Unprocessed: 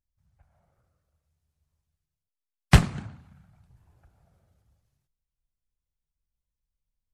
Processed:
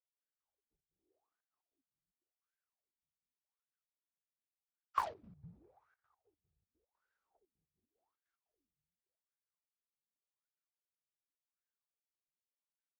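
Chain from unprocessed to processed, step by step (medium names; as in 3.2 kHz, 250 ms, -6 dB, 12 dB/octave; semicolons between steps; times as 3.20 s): pre-emphasis filter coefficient 0.8; wah-wah 1.6 Hz 270–2900 Hz, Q 12; wide varispeed 0.549×; trance gate "x.x.xx.x.xxxxx." 149 bpm -12 dB; in parallel at -12 dB: sine folder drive 9 dB, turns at -48 dBFS; on the sum: trim +8 dB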